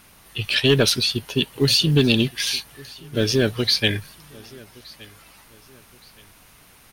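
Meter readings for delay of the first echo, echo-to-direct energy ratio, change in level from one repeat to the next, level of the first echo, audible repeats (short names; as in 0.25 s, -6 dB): 1.17 s, -23.0 dB, -9.0 dB, -23.5 dB, 2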